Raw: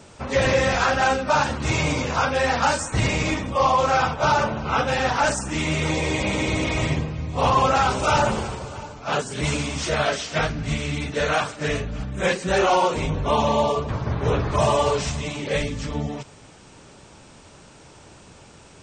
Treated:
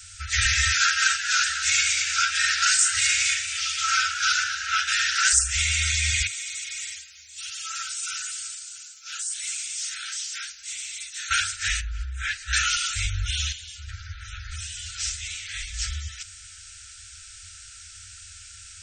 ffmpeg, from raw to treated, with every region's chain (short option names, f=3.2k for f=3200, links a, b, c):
-filter_complex "[0:a]asettb=1/sr,asplit=3[a][b][c];[a]atrim=end=0.734[d];[b]atrim=start=0.73:end=5.33,asetpts=PTS-STARTPTS,afade=t=in:d=0.004:c=qsin,afade=t=out:st=4.596:d=0.004:c=qsin,highpass=270,asplit=8[e][f][g][h][i][j][k][l];[f]adelay=228,afreqshift=110,volume=-10dB[m];[g]adelay=456,afreqshift=220,volume=-14.9dB[n];[h]adelay=684,afreqshift=330,volume=-19.8dB[o];[i]adelay=912,afreqshift=440,volume=-24.6dB[p];[j]adelay=1140,afreqshift=550,volume=-29.5dB[q];[k]adelay=1368,afreqshift=660,volume=-34.4dB[r];[l]adelay=1596,afreqshift=770,volume=-39.3dB[s];[e][m][n][o][p][q][r][s]amix=inputs=8:normalize=0,atrim=end_sample=202860[t];[c]atrim=start=5.326[u];[d][t]acrossfade=d=0.004:c1=hsin:c2=qsin[v];[v][u]acrossfade=d=0.004:c1=qsin:c2=hsin,asettb=1/sr,asplit=3[w][x][y];[w]atrim=end=6.274[z];[x]atrim=start=6.27:end=11.31,asetpts=PTS-STARTPTS,afade=t=in:d=0.004:c=qsin,afade=t=out:st=5.036:d=0.004:c=qsin,acrossover=split=2500[aa][ab];[ab]acompressor=threshold=-36dB:ratio=4:attack=1:release=60[ac];[aa][ac]amix=inputs=2:normalize=0,aderivative[ad];[y]atrim=start=11.306[ae];[z][ad]acrossfade=d=0.004:c1=hsin:c2=qsin[af];[af][ae]acrossfade=d=0.004:c1=qsin:c2=hsin,asettb=1/sr,asplit=3[ag][ah][ai];[ag]atrim=end=11.814[aj];[ah]atrim=start=11.81:end=12.53,asetpts=PTS-STARTPTS,afade=t=in:d=0.004:c=qsin,afade=t=out:st=0.716:d=0.004:c=qsin,highshelf=f=2.3k:g=-11,acrossover=split=5600[ak][al];[al]acompressor=threshold=-58dB:ratio=4:attack=1:release=60[am];[ak][am]amix=inputs=2:normalize=0[an];[ai]atrim=start=12.526[ao];[aj][an]acrossfade=d=0.004:c1=hsin:c2=qsin[ap];[ap][ao]acrossfade=d=0.004:c1=qsin:c2=hsin,asettb=1/sr,asplit=3[aq][ar][as];[aq]atrim=end=13.524[at];[ar]atrim=start=13.52:end=15.74,asetpts=PTS-STARTPTS,afade=t=in:d=0.004:c=qsin,afade=t=out:st=2.216:d=0.004:c=qsin,acompressor=threshold=-25dB:ratio=2.5:attack=3.2:release=140:knee=1:detection=peak,flanger=delay=6.6:depth=2.3:regen=-58:speed=1.3:shape=sinusoidal[au];[as]atrim=start=15.736[av];[at][au]acrossfade=d=0.004:c1=hsin:c2=qsin[aw];[aw][av]acrossfade=d=0.004:c1=qsin:c2=hsin,afftfilt=real='re*(1-between(b*sr/4096,100,1300))':imag='im*(1-between(b*sr/4096,100,1300))':win_size=4096:overlap=0.75,bass=f=250:g=0,treble=f=4k:g=11,volume=1.5dB"